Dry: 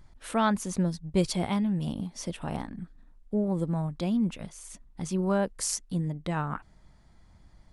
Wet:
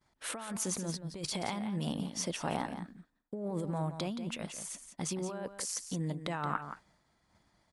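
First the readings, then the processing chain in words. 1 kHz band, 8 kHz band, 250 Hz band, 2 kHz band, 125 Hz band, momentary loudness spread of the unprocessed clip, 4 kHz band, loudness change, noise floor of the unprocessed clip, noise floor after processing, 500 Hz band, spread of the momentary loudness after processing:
-5.0 dB, -1.0 dB, -9.5 dB, -4.0 dB, -7.5 dB, 14 LU, -1.0 dB, -7.0 dB, -58 dBFS, -75 dBFS, -7.5 dB, 6 LU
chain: high-pass 380 Hz 6 dB/octave; expander -60 dBFS; compressor with a negative ratio -36 dBFS, ratio -1; on a send: delay 174 ms -10 dB

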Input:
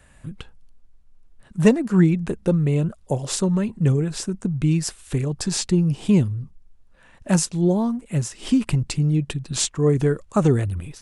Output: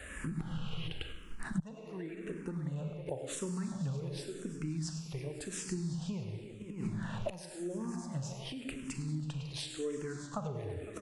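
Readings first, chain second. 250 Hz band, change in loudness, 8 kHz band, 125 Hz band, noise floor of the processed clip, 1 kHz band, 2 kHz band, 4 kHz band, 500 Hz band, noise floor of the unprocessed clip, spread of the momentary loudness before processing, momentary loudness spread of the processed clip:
-18.5 dB, -18.5 dB, -16.5 dB, -17.5 dB, -48 dBFS, -14.0 dB, -12.0 dB, -13.0 dB, -17.0 dB, -53 dBFS, 9 LU, 5 LU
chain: bass shelf 330 Hz -8 dB; on a send: multi-tap echo 99/105/188/326/506/606 ms -17.5/-15.5/-18.5/-17.5/-18.5/-16.5 dB; on the sum: Schroeder reverb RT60 1.4 s, combs from 29 ms, DRR 6 dB; spectral replace 0.42–0.85 s, 950–9800 Hz after; treble shelf 4 kHz -5.5 dB; level rider gain up to 11 dB; inverted gate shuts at -18 dBFS, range -29 dB; compression 10:1, threshold -44 dBFS, peak gain reduction 21 dB; barber-pole phaser -0.92 Hz; trim +12.5 dB

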